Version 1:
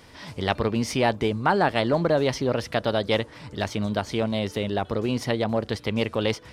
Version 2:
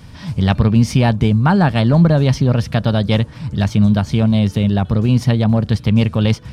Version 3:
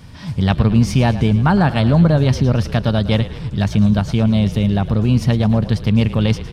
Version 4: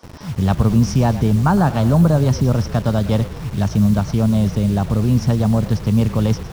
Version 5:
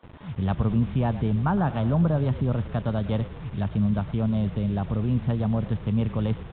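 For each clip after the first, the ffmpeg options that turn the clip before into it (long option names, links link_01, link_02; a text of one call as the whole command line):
ffmpeg -i in.wav -af "lowshelf=frequency=250:width_type=q:width=1.5:gain=11.5,bandreject=frequency=2000:width=14,volume=4dB" out.wav
ffmpeg -i in.wav -filter_complex "[0:a]asplit=8[link_01][link_02][link_03][link_04][link_05][link_06][link_07][link_08];[link_02]adelay=110,afreqshift=-34,volume=-14.5dB[link_09];[link_03]adelay=220,afreqshift=-68,volume=-18.7dB[link_10];[link_04]adelay=330,afreqshift=-102,volume=-22.8dB[link_11];[link_05]adelay=440,afreqshift=-136,volume=-27dB[link_12];[link_06]adelay=550,afreqshift=-170,volume=-31.1dB[link_13];[link_07]adelay=660,afreqshift=-204,volume=-35.3dB[link_14];[link_08]adelay=770,afreqshift=-238,volume=-39.4dB[link_15];[link_01][link_09][link_10][link_11][link_12][link_13][link_14][link_15]amix=inputs=8:normalize=0,volume=-1dB" out.wav
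ffmpeg -i in.wav -filter_complex "[0:a]equalizer=frequency=5700:width_type=o:width=0.36:gain=13,acrossover=split=340|850[link_01][link_02][link_03];[link_01]acrusher=bits=5:mix=0:aa=0.000001[link_04];[link_03]highshelf=frequency=1600:width_type=q:width=1.5:gain=-8[link_05];[link_04][link_02][link_05]amix=inputs=3:normalize=0,volume=-1dB" out.wav
ffmpeg -i in.wav -af "aresample=8000,aresample=44100,volume=-8.5dB" out.wav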